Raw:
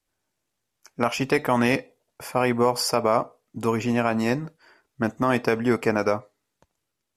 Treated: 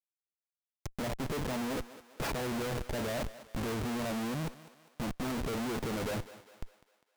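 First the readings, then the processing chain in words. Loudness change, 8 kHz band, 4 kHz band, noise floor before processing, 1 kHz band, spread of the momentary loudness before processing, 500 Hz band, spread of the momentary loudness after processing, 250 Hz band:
-12.0 dB, -8.5 dB, -9.0 dB, -80 dBFS, -14.5 dB, 8 LU, -13.5 dB, 16 LU, -11.0 dB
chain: treble ducked by the level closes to 650 Hz, closed at -22 dBFS; Schmitt trigger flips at -38.5 dBFS; thinning echo 0.201 s, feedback 50%, high-pass 300 Hz, level -15 dB; gain -7 dB

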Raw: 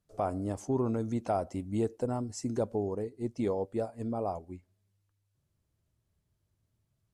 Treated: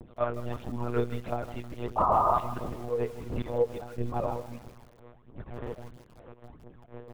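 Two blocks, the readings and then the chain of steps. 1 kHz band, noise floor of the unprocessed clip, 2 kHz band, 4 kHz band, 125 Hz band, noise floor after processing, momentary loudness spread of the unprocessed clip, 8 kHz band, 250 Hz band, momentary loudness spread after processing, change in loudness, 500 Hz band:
+9.0 dB, -79 dBFS, +7.5 dB, +3.0 dB, +1.5 dB, -56 dBFS, 5 LU, n/a, -4.0 dB, 19 LU, +2.5 dB, +2.0 dB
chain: frequency quantiser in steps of 2 st; wind noise 410 Hz -48 dBFS; comb 6.5 ms, depth 51%; auto swell 0.136 s; phaser 1.5 Hz, delay 2.4 ms, feedback 72%; painted sound noise, 1.97–2.39, 570–1300 Hz -24 dBFS; monotone LPC vocoder at 8 kHz 120 Hz; lo-fi delay 0.158 s, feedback 55%, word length 7-bit, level -13.5 dB

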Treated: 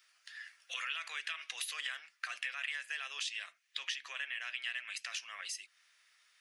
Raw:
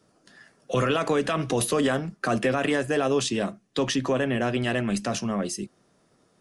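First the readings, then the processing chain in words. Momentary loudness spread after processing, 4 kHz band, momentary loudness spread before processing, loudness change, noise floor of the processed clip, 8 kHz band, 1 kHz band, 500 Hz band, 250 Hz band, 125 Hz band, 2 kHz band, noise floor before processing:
6 LU, -6.0 dB, 6 LU, -14.0 dB, -72 dBFS, -11.5 dB, -20.0 dB, -40.0 dB, under -40 dB, under -40 dB, -7.0 dB, -65 dBFS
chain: Chebyshev high-pass 2100 Hz, order 3; bell 9300 Hz -14.5 dB 2.1 oct; compressor 2.5:1, threshold -55 dBFS, peak gain reduction 15 dB; gain +12.5 dB

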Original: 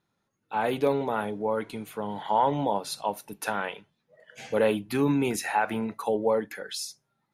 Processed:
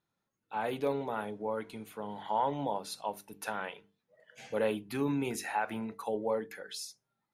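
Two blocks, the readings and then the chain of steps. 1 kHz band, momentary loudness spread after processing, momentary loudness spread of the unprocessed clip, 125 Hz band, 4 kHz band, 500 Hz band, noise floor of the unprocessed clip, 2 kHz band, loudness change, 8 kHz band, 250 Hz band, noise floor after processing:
-7.0 dB, 10 LU, 10 LU, -8.0 dB, -7.0 dB, -7.5 dB, -78 dBFS, -7.0 dB, -7.0 dB, -7.0 dB, -7.5 dB, -85 dBFS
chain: notches 50/100/150/200/250/300/350/400/450 Hz; gain -7 dB

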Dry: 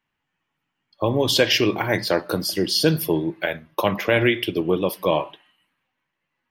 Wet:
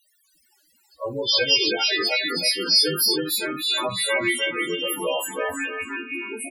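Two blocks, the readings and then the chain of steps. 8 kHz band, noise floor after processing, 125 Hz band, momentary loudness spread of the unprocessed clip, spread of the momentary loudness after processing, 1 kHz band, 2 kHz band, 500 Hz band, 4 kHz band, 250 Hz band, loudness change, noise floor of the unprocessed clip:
+3.5 dB, -64 dBFS, -13.5 dB, 7 LU, 12 LU, -3.5 dB, +1.5 dB, -5.5 dB, +5.0 dB, -7.0 dB, 0.0 dB, -79 dBFS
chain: frequency quantiser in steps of 2 st; low shelf 290 Hz -9 dB; in parallel at -5.5 dB: requantised 6-bit, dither triangular; on the sum: echoes that change speed 0.227 s, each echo -4 st, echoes 3, each echo -6 dB; loudest bins only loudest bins 8; on a send: tapped delay 52/319/605 ms -17.5/-4/-19.5 dB; on the sum: gain -6.5 dB

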